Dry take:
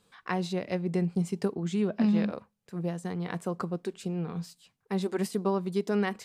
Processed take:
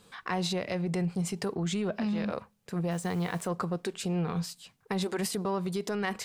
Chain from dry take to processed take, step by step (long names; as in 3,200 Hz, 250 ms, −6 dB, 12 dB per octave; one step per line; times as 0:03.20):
in parallel at −11 dB: soft clipping −30.5 dBFS, distortion −8 dB
on the sum: brickwall limiter −25.5 dBFS, peak gain reduction 10.5 dB
dynamic equaliser 260 Hz, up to −7 dB, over −45 dBFS, Q 0.77
0:02.91–0:03.46: bit-depth reduction 10 bits, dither none
level +6.5 dB